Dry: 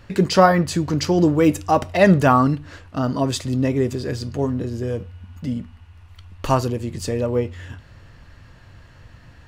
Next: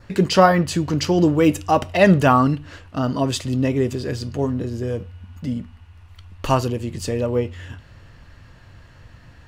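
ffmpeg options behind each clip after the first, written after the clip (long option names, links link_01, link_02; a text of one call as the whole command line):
ffmpeg -i in.wav -af "adynamicequalizer=threshold=0.00398:dfrequency=2900:dqfactor=4.5:tfrequency=2900:tqfactor=4.5:attack=5:release=100:ratio=0.375:range=3:mode=boostabove:tftype=bell" out.wav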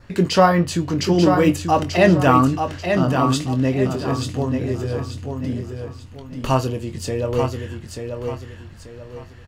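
ffmpeg -i in.wav -filter_complex "[0:a]asplit=2[link_01][link_02];[link_02]adelay=23,volume=-9dB[link_03];[link_01][link_03]amix=inputs=2:normalize=0,asplit=2[link_04][link_05];[link_05]aecho=0:1:887|1774|2661|3548:0.501|0.165|0.0546|0.018[link_06];[link_04][link_06]amix=inputs=2:normalize=0,volume=-1dB" out.wav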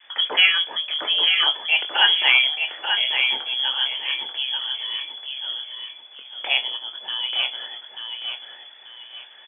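ffmpeg -i in.wav -filter_complex "[0:a]lowpass=frequency=3000:width_type=q:width=0.5098,lowpass=frequency=3000:width_type=q:width=0.6013,lowpass=frequency=3000:width_type=q:width=0.9,lowpass=frequency=3000:width_type=q:width=2.563,afreqshift=-3500,acrossover=split=250 2600:gain=0.1 1 0.141[link_01][link_02][link_03];[link_01][link_02][link_03]amix=inputs=3:normalize=0,volume=3dB" out.wav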